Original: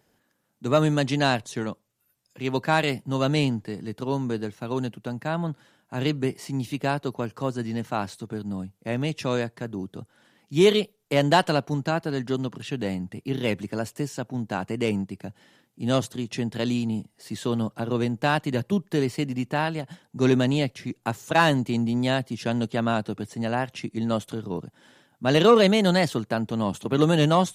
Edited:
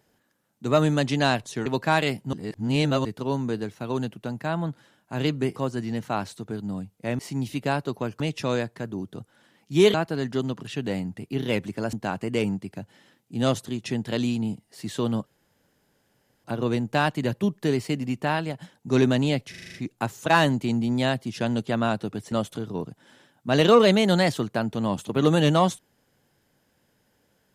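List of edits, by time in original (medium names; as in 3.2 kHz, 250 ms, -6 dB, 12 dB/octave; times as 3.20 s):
1.66–2.47 s: delete
3.14–3.86 s: reverse
6.37–7.38 s: move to 9.01 s
10.75–11.89 s: delete
13.88–14.40 s: delete
17.73 s: insert room tone 1.18 s
20.79 s: stutter 0.04 s, 7 plays
23.37–24.08 s: delete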